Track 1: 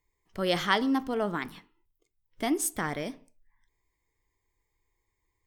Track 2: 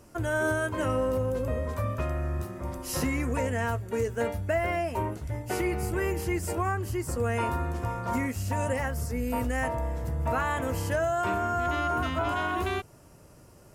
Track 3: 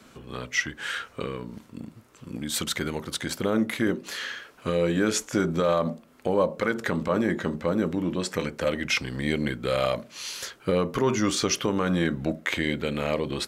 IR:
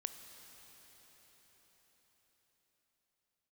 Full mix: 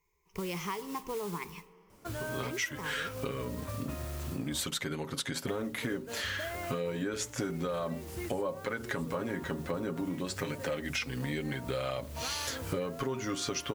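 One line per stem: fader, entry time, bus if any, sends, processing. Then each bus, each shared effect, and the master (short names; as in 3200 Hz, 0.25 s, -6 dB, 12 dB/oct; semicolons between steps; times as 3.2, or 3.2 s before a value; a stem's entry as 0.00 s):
-2.5 dB, 0.00 s, bus A, send -20.5 dB, ripple EQ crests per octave 0.78, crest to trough 17 dB
-7.5 dB, 1.90 s, muted 4.7–5.47, bus A, no send, dry
+1.5 dB, 2.05 s, no bus, no send, comb 7.3 ms, depth 60%
bus A: 0.0 dB, modulation noise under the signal 11 dB; compressor, threshold -33 dBFS, peak gain reduction 14 dB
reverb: on, RT60 5.7 s, pre-delay 19 ms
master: compressor 6:1, threshold -32 dBFS, peak gain reduction 17 dB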